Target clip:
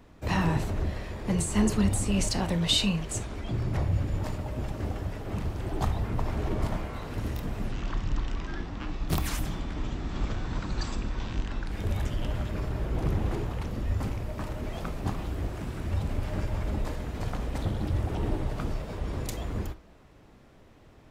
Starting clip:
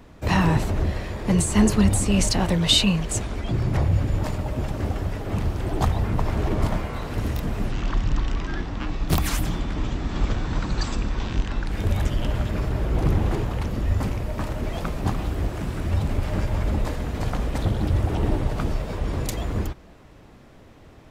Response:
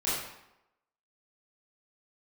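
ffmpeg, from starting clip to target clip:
-filter_complex "[0:a]asplit=2[s0][s1];[1:a]atrim=start_sample=2205,atrim=end_sample=3528[s2];[s1][s2]afir=irnorm=-1:irlink=0,volume=0.133[s3];[s0][s3]amix=inputs=2:normalize=0,volume=0.422"

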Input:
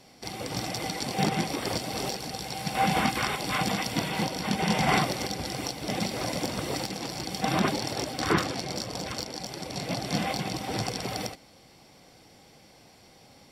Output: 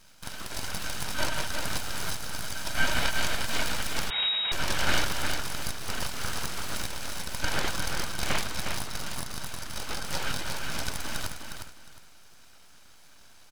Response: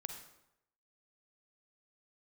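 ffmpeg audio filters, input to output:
-filter_complex "[0:a]highpass=180,equalizer=f=240:t=o:w=0.5:g=-12.5,aecho=1:1:1.3:0.64,aeval=exprs='abs(val(0))':c=same,asplit=2[s0][s1];[s1]aecho=0:1:358|716|1074:0.501|0.115|0.0265[s2];[s0][s2]amix=inputs=2:normalize=0,asettb=1/sr,asplit=3[s3][s4][s5];[s3]atrim=end=4.104[s6];[s4]atrim=start=4.1:end=4.52,asetpts=PTS-STARTPTS,afade=t=in:d=0.004:c=qsin,afade=t=out:st=0.416:d=0.004:c=qsin,lowpass=f=3200:t=q:w=0.5098,lowpass=f=3200:t=q:w=0.6013,lowpass=f=3200:t=q:w=0.9,lowpass=f=3200:t=q:w=2.563,afreqshift=-3800[s7];[s5]atrim=start=4.516[s8];[s6][s7]acrossfade=d=0.004:c1=hsin:c2=qsin[s9];[s9][s8]acrossfade=d=0.004:c1=qsin:c2=hsin"

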